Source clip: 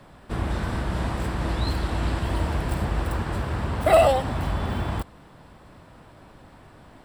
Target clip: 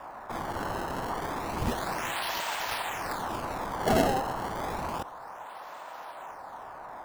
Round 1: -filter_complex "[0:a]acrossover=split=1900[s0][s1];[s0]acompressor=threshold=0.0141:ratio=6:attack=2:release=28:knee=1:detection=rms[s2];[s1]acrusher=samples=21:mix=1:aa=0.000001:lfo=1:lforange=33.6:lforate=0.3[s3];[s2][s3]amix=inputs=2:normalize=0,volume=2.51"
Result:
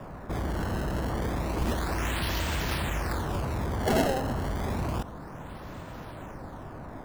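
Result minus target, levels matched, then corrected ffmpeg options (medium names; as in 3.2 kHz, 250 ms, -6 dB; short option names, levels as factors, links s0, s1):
1 kHz band -5.0 dB
-filter_complex "[0:a]acrossover=split=1900[s0][s1];[s0]acompressor=threshold=0.0141:ratio=6:attack=2:release=28:knee=1:detection=rms,highpass=f=820:t=q:w=2[s2];[s1]acrusher=samples=21:mix=1:aa=0.000001:lfo=1:lforange=33.6:lforate=0.3[s3];[s2][s3]amix=inputs=2:normalize=0,volume=2.51"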